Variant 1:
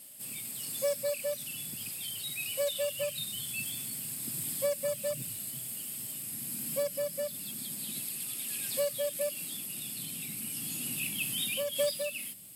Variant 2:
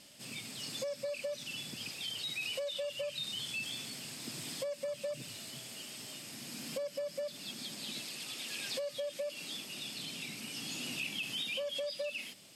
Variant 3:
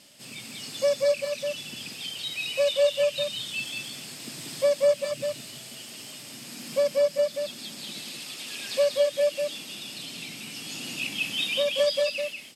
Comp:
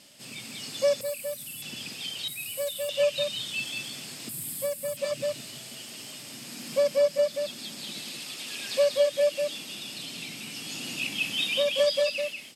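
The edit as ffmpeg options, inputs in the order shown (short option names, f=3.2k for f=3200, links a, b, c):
-filter_complex "[0:a]asplit=3[a][b][c];[2:a]asplit=4[d][e][f][g];[d]atrim=end=1.012[h];[a]atrim=start=1.008:end=1.622[i];[e]atrim=start=1.618:end=2.282[j];[b]atrim=start=2.278:end=2.892[k];[f]atrim=start=2.888:end=4.292[l];[c]atrim=start=4.288:end=4.972[m];[g]atrim=start=4.968[n];[h][i]acrossfade=d=0.004:c1=hsin:c2=hsin[o];[o][j]acrossfade=d=0.004:c1=hsin:c2=hsin[p];[p][k]acrossfade=d=0.004:c1=hsin:c2=hsin[q];[q][l]acrossfade=d=0.004:c1=hsin:c2=hsin[r];[r][m]acrossfade=d=0.004:c1=hsin:c2=hsin[s];[s][n]acrossfade=d=0.004:c1=hsin:c2=hsin"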